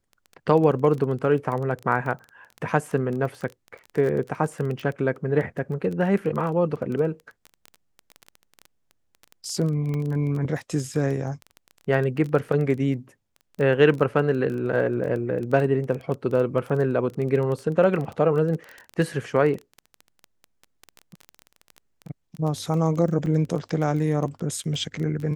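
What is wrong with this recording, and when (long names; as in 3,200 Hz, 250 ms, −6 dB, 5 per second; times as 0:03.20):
surface crackle 17 per second −29 dBFS
0:09.94: click −19 dBFS
0:23.26: drop-out 2.1 ms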